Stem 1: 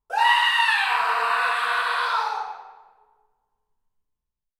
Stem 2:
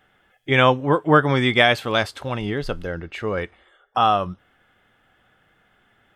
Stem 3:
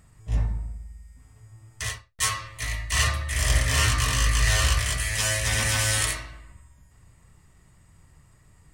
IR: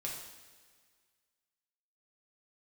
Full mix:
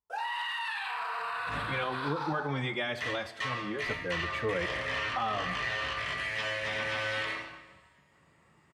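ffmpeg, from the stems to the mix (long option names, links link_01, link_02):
-filter_complex "[0:a]alimiter=limit=-18.5dB:level=0:latency=1:release=19,volume=-8.5dB[link_01];[1:a]dynaudnorm=framelen=390:gausssize=3:maxgain=11.5dB,asplit=2[link_02][link_03];[link_03]adelay=3.9,afreqshift=2.1[link_04];[link_02][link_04]amix=inputs=2:normalize=1,adelay=1200,volume=-13.5dB,asplit=2[link_05][link_06];[link_06]volume=-8.5dB[link_07];[2:a]acrossover=split=4700[link_08][link_09];[link_09]acompressor=threshold=-44dB:ratio=4:attack=1:release=60[link_10];[link_08][link_10]amix=inputs=2:normalize=0,acrossover=split=200 4100:gain=0.112 1 0.224[link_11][link_12][link_13];[link_11][link_12][link_13]amix=inputs=3:normalize=0,acompressor=threshold=-31dB:ratio=6,adelay=1200,volume=-2.5dB,asplit=2[link_14][link_15];[link_15]volume=-3.5dB[link_16];[3:a]atrim=start_sample=2205[link_17];[link_07][link_16]amix=inputs=2:normalize=0[link_18];[link_18][link_17]afir=irnorm=-1:irlink=0[link_19];[link_01][link_05][link_14][link_19]amix=inputs=4:normalize=0,highpass=69,highshelf=frequency=7900:gain=-5.5,alimiter=limit=-22.5dB:level=0:latency=1:release=78"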